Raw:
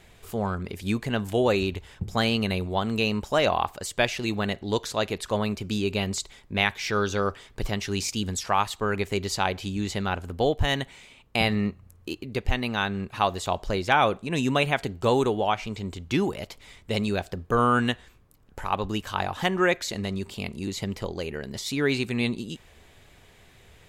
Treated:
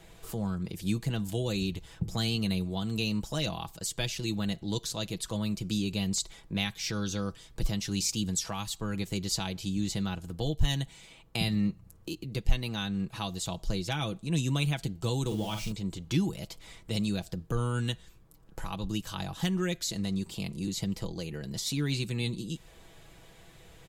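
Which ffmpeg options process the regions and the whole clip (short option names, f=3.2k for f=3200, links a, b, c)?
-filter_complex "[0:a]asettb=1/sr,asplit=3[a][b][c];[a]atrim=end=15.264[d];[b]atrim=start=15.26:end=15.72,asetpts=PTS-STARTPTS,afade=t=in:d=0.004:c=qsin,afade=t=out:st=0.456:d=0.004:c=qsin,aeval=exprs='val(0)+0.5*0.0141*sgn(val(0))':c=same,asplit=2[e][f];[f]adelay=47,volume=-6.5dB[g];[e][g]amix=inputs=2:normalize=0,atrim=end_sample=20286[h];[c]atrim=start=15.716[i];[d][h]acrossfade=d=0.004:c1=hsin:c2=qsin[j];[j][i]acrossfade=d=0.004:c1=qsin:c2=hsin,equalizer=f=2.2k:t=o:w=1.2:g=-4.5,aecho=1:1:6.1:0.57,acrossover=split=240|3000[k][l][m];[l]acompressor=threshold=-46dB:ratio=2.5[n];[k][n][m]amix=inputs=3:normalize=0"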